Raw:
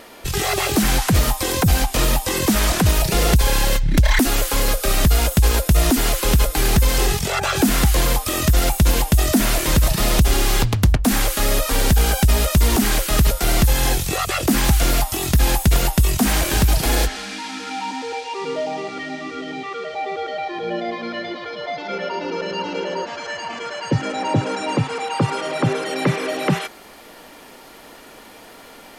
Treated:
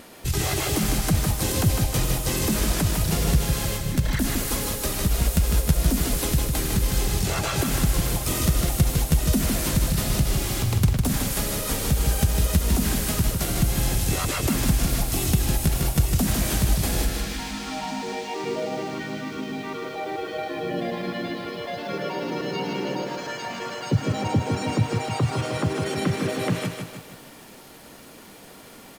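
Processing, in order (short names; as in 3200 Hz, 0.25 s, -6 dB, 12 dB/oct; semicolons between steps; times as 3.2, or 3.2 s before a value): compressor 6:1, threshold -19 dBFS, peak gain reduction 9 dB; high shelf 4600 Hz +7 dB; harmoniser -4 st -5 dB; bell 110 Hz +10 dB 2.8 oct; lo-fi delay 0.154 s, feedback 55%, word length 7-bit, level -5 dB; gain -8 dB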